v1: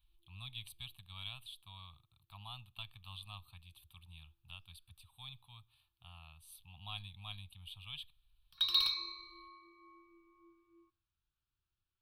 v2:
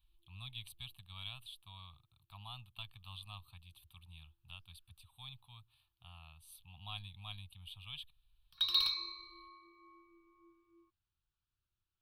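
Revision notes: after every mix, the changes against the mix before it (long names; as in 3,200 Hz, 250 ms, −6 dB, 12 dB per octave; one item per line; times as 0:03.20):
reverb: off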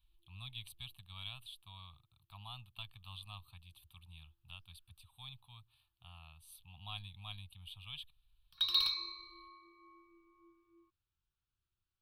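nothing changed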